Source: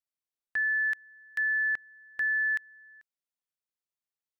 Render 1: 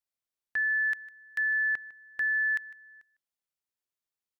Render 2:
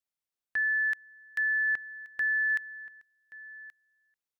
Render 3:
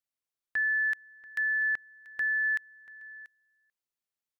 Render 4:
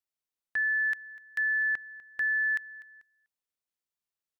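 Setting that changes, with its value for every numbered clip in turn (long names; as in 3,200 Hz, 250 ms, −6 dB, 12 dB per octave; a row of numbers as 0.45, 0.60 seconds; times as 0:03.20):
single-tap delay, delay time: 153, 1,127, 686, 247 milliseconds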